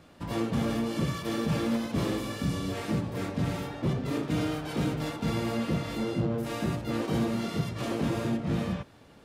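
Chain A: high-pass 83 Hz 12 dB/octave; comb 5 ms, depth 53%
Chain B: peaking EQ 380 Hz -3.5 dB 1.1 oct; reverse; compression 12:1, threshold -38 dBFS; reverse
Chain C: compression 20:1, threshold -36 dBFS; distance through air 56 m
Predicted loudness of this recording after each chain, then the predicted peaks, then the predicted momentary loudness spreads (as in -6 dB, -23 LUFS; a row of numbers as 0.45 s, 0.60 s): -29.5 LUFS, -42.5 LUFS, -41.0 LUFS; -16.0 dBFS, -29.0 dBFS, -27.0 dBFS; 4 LU, 1 LU, 1 LU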